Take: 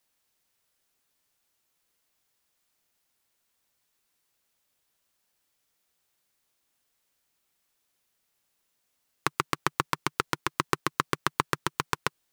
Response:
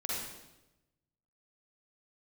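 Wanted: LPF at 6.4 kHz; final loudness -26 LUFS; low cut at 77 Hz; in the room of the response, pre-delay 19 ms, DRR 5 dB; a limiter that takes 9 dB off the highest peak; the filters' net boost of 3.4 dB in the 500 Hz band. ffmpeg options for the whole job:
-filter_complex "[0:a]highpass=77,lowpass=6400,equalizer=f=500:t=o:g=4.5,alimiter=limit=0.266:level=0:latency=1,asplit=2[s0][s1];[1:a]atrim=start_sample=2205,adelay=19[s2];[s1][s2]afir=irnorm=-1:irlink=0,volume=0.355[s3];[s0][s3]amix=inputs=2:normalize=0,volume=3.35"

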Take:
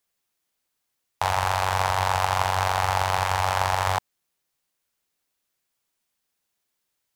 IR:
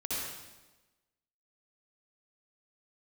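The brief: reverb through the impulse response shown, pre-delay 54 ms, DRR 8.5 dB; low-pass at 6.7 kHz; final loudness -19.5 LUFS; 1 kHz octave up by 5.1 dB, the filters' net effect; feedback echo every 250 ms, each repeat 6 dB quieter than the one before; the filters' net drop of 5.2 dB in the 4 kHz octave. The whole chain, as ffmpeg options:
-filter_complex "[0:a]lowpass=6700,equalizer=f=1000:t=o:g=6.5,equalizer=f=4000:t=o:g=-7,aecho=1:1:250|500|750|1000|1250|1500:0.501|0.251|0.125|0.0626|0.0313|0.0157,asplit=2[s0][s1];[1:a]atrim=start_sample=2205,adelay=54[s2];[s1][s2]afir=irnorm=-1:irlink=0,volume=0.224[s3];[s0][s3]amix=inputs=2:normalize=0,volume=0.944"

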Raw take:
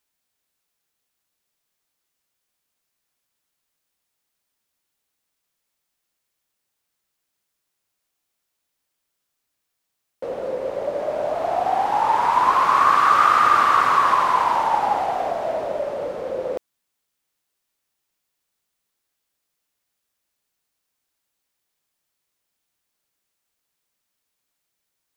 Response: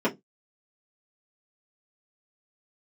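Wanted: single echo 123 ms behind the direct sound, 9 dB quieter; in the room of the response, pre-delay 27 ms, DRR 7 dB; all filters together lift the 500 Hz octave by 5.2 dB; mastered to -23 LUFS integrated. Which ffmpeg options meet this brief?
-filter_complex "[0:a]equalizer=f=500:t=o:g=6.5,aecho=1:1:123:0.355,asplit=2[s0][s1];[1:a]atrim=start_sample=2205,adelay=27[s2];[s1][s2]afir=irnorm=-1:irlink=0,volume=0.1[s3];[s0][s3]amix=inputs=2:normalize=0,volume=0.447"

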